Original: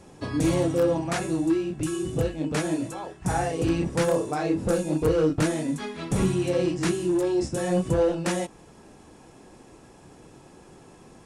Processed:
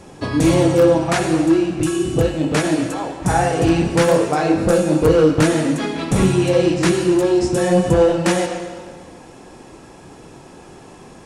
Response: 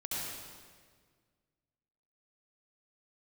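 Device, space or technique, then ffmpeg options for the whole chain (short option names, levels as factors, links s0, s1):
filtered reverb send: -filter_complex "[0:a]asplit=2[s0][s1];[s1]highpass=f=490:p=1,lowpass=6700[s2];[1:a]atrim=start_sample=2205[s3];[s2][s3]afir=irnorm=-1:irlink=0,volume=0.473[s4];[s0][s4]amix=inputs=2:normalize=0,volume=2.37"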